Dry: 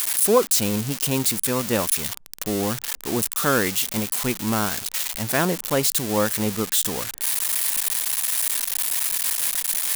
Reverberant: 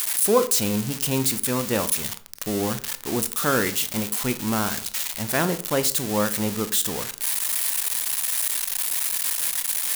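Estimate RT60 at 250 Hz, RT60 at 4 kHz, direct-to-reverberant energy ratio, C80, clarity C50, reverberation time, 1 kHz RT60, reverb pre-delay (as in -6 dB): 0.65 s, 0.30 s, 11.0 dB, 20.5 dB, 16.5 dB, 0.50 s, 0.45 s, 20 ms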